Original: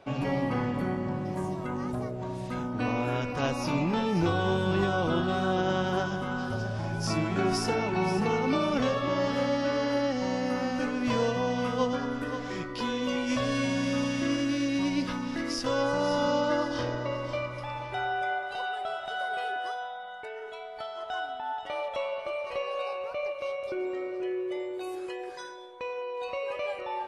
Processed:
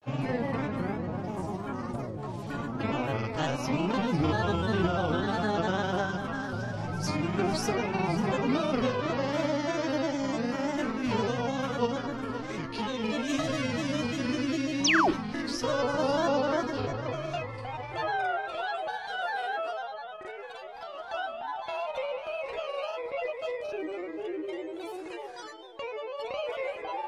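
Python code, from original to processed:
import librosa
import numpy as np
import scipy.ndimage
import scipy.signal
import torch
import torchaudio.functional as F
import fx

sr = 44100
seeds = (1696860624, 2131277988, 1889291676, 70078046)

y = fx.doubler(x, sr, ms=31.0, db=-12.5)
y = fx.spec_paint(y, sr, seeds[0], shape='fall', start_s=14.83, length_s=0.29, low_hz=310.0, high_hz=6600.0, level_db=-22.0)
y = fx.granulator(y, sr, seeds[1], grain_ms=100.0, per_s=20.0, spray_ms=32.0, spread_st=3)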